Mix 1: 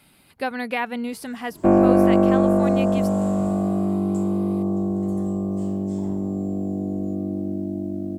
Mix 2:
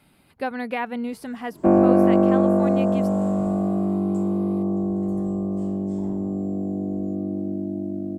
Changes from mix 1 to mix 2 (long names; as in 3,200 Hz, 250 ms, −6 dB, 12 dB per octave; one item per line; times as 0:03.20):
second sound: add high-pass filter 110 Hz
master: add high-shelf EQ 2,100 Hz −8 dB